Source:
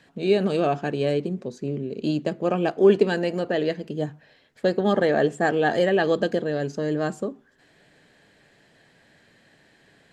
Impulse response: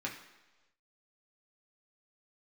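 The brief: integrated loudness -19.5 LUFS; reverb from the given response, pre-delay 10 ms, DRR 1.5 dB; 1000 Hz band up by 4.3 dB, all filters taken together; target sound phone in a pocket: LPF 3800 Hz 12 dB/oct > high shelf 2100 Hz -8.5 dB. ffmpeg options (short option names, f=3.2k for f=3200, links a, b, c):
-filter_complex "[0:a]equalizer=f=1k:t=o:g=8.5,asplit=2[a][b];[1:a]atrim=start_sample=2205,adelay=10[c];[b][c]afir=irnorm=-1:irlink=0,volume=-4dB[d];[a][d]amix=inputs=2:normalize=0,lowpass=3.8k,highshelf=f=2.1k:g=-8.5,volume=1dB"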